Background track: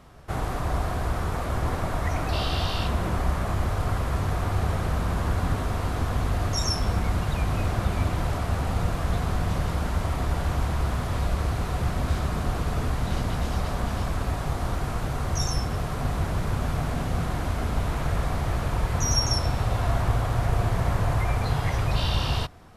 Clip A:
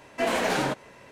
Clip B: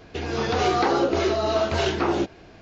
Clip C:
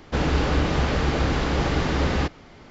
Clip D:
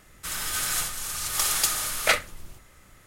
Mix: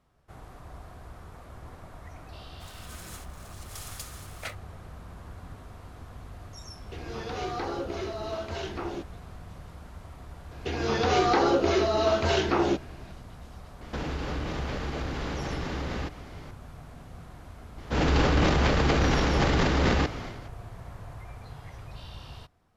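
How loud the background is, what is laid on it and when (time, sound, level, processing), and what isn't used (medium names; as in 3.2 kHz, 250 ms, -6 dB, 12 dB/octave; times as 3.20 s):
background track -18.5 dB
2.36 s: add D -17 dB + hysteresis with a dead band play -28.5 dBFS
6.77 s: add B -12 dB
10.51 s: add B -1.5 dB
13.81 s: add C + compression, threshold -29 dBFS
17.78 s: add C -1.5 dB + transient shaper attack -4 dB, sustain +11 dB
not used: A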